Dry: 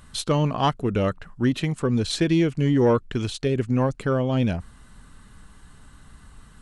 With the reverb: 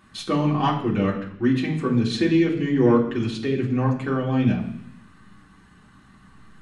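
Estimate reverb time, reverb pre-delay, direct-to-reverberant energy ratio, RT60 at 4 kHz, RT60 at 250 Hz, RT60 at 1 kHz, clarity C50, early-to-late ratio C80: 0.70 s, 3 ms, −5.0 dB, 0.95 s, 0.90 s, 0.70 s, 8.0 dB, 11.0 dB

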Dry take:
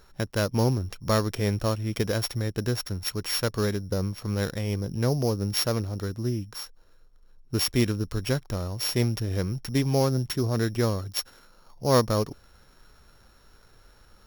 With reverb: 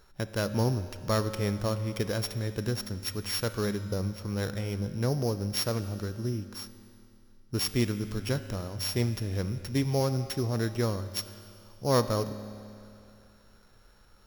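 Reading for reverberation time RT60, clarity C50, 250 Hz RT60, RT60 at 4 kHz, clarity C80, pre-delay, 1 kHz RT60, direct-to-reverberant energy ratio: 2.6 s, 11.5 dB, 2.7 s, 2.6 s, 12.0 dB, 4 ms, 2.6 s, 10.0 dB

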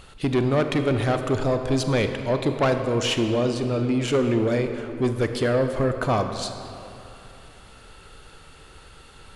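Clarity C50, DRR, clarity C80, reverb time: 7.0 dB, 6.5 dB, 8.0 dB, 2.9 s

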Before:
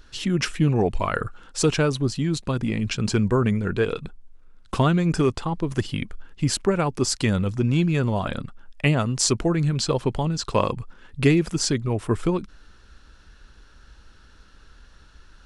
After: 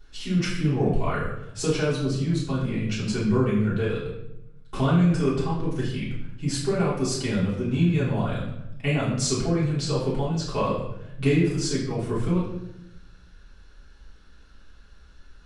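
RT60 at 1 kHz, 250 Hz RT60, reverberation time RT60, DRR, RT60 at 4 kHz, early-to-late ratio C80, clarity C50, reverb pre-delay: 0.75 s, 1.2 s, 0.85 s, −9.0 dB, 0.60 s, 6.0 dB, 3.0 dB, 3 ms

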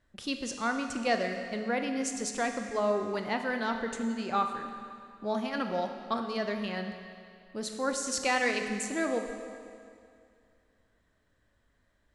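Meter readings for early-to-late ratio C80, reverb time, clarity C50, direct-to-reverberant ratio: 7.0 dB, 2.3 s, 6.0 dB, 5.0 dB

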